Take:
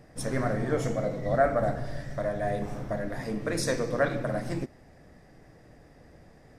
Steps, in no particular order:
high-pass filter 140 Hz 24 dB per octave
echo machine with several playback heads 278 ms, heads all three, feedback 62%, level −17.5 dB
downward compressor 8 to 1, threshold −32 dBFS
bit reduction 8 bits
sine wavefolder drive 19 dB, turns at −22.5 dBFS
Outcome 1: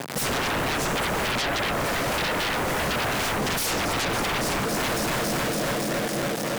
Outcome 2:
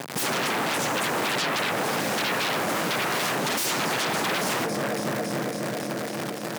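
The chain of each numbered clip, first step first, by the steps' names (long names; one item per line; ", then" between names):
echo machine with several playback heads, then bit reduction, then downward compressor, then high-pass filter, then sine wavefolder
bit reduction, then downward compressor, then echo machine with several playback heads, then sine wavefolder, then high-pass filter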